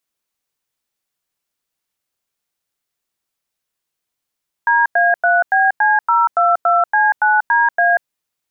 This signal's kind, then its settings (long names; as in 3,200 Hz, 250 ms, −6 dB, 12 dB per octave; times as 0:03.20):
touch tones "DA3BC022C9DA", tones 188 ms, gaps 95 ms, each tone −13 dBFS